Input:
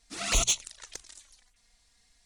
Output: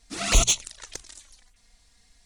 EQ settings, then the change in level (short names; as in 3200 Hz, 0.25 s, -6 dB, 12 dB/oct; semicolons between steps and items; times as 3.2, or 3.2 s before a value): low shelf 490 Hz +5 dB; +4.0 dB